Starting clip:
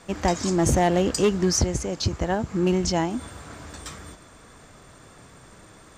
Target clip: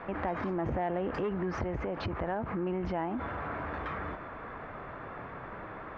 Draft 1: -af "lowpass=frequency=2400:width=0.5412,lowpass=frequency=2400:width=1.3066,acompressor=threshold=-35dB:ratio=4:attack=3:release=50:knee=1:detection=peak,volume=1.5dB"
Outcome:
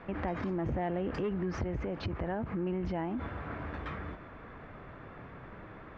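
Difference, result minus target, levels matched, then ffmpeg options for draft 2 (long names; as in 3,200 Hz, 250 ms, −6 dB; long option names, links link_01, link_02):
1,000 Hz band −5.0 dB
-af "lowpass=frequency=2400:width=0.5412,lowpass=frequency=2400:width=1.3066,equalizer=frequency=960:width_type=o:width=2.6:gain=9,acompressor=threshold=-35dB:ratio=4:attack=3:release=50:knee=1:detection=peak,volume=1.5dB"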